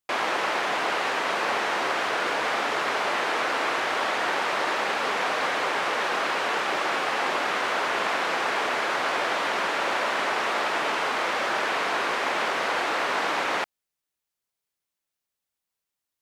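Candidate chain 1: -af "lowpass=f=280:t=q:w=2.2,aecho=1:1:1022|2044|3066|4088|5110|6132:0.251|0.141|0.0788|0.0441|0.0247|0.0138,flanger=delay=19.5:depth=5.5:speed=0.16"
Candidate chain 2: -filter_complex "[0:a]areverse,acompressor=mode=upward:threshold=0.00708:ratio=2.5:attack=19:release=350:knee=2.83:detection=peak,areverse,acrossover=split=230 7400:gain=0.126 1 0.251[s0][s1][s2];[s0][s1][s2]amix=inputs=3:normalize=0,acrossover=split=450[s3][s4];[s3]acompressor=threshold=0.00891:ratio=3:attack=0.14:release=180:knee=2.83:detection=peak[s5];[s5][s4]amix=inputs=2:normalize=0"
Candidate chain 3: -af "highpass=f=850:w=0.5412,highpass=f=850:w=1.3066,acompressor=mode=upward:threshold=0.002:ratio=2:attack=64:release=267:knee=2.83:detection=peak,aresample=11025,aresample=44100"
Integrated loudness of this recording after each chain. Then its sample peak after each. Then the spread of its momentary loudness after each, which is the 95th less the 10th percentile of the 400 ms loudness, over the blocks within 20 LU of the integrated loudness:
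-39.5 LUFS, -25.5 LUFS, -26.5 LUFS; -25.0 dBFS, -13.0 dBFS, -14.0 dBFS; 11 LU, 0 LU, 0 LU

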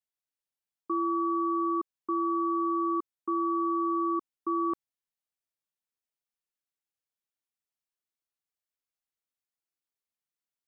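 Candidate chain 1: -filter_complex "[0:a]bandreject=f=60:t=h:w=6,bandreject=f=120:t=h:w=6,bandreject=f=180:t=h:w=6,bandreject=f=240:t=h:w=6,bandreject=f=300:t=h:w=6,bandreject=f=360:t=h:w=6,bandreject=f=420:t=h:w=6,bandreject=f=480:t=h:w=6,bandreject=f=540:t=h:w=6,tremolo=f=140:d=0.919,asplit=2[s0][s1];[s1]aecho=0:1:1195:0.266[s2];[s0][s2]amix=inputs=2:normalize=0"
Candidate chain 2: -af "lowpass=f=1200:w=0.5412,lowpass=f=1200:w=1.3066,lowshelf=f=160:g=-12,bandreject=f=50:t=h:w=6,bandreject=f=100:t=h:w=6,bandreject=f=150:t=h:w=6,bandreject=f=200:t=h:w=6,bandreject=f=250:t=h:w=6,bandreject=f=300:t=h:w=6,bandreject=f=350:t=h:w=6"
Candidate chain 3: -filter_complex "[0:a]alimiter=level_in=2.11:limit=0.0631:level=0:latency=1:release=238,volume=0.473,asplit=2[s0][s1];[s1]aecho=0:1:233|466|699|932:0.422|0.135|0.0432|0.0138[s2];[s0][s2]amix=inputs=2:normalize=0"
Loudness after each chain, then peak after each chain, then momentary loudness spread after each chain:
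-34.0 LUFS, -32.0 LUFS, -39.5 LUFS; -22.0 dBFS, -24.0 dBFS, -30.0 dBFS; 14 LU, 5 LU, 8 LU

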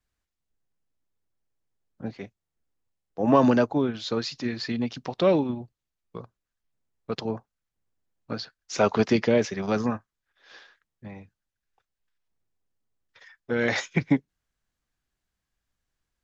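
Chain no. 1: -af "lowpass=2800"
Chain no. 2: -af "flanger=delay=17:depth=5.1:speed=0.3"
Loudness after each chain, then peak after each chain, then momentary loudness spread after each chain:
-25.5 LUFS, -29.0 LUFS; -6.5 dBFS, -10.0 dBFS; 22 LU, 22 LU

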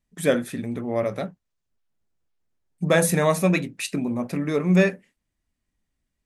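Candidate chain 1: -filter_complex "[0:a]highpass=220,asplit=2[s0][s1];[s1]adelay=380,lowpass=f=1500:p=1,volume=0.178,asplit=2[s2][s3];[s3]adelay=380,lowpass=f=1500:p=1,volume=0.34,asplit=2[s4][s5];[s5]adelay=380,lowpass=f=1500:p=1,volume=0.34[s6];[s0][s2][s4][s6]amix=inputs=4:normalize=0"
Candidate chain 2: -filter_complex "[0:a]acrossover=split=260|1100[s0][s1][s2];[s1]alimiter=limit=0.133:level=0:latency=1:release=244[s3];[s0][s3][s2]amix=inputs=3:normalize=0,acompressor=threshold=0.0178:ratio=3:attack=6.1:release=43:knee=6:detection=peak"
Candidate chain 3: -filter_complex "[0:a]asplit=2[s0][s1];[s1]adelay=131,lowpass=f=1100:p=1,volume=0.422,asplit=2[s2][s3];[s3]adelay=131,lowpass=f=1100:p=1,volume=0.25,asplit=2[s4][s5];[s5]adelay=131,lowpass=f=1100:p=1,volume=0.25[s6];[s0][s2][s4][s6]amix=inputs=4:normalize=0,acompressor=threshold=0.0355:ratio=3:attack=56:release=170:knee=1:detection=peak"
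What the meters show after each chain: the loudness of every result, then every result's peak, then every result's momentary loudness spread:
-24.5 LUFS, -34.5 LUFS, -28.5 LUFS; -6.5 dBFS, -21.5 dBFS, -11.5 dBFS; 16 LU, 6 LU, 8 LU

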